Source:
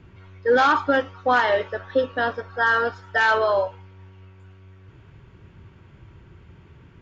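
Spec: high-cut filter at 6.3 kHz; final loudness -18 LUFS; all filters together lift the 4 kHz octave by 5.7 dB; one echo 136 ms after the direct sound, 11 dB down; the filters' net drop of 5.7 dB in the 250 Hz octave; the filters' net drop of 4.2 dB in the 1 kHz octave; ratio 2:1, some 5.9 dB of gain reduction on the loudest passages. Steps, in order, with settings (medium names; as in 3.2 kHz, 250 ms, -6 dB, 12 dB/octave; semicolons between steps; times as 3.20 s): low-pass 6.3 kHz; peaking EQ 250 Hz -6 dB; peaking EQ 1 kHz -6 dB; peaking EQ 4 kHz +8.5 dB; compression 2:1, threshold -27 dBFS; delay 136 ms -11 dB; trim +10 dB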